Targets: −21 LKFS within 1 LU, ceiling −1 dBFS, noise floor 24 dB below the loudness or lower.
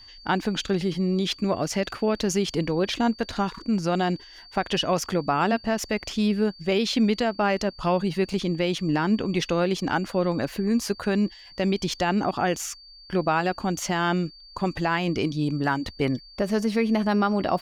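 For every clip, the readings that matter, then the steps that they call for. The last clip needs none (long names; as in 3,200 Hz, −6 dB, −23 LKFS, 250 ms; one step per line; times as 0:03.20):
interfering tone 4,600 Hz; level of the tone −46 dBFS; integrated loudness −25.5 LKFS; sample peak −12.0 dBFS; target loudness −21.0 LKFS
→ notch filter 4,600 Hz, Q 30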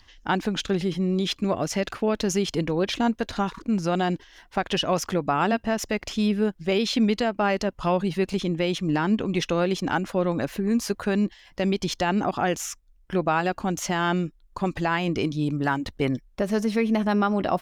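interfering tone none found; integrated loudness −25.5 LKFS; sample peak −12.0 dBFS; target loudness −21.0 LKFS
→ level +4.5 dB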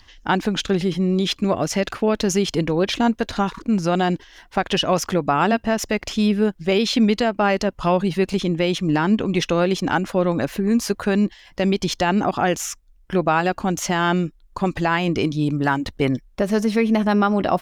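integrated loudness −21.0 LKFS; sample peak −7.5 dBFS; background noise floor −53 dBFS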